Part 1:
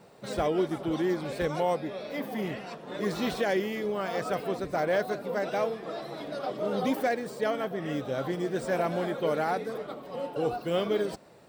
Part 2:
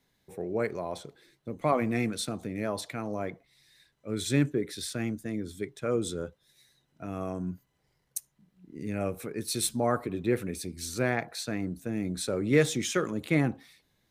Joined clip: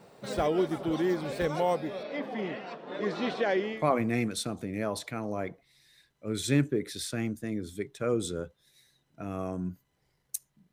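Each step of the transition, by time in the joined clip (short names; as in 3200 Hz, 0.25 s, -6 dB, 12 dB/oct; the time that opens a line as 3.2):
part 1
2.03–3.85 BPF 210–3900 Hz
3.78 switch to part 2 from 1.6 s, crossfade 0.14 s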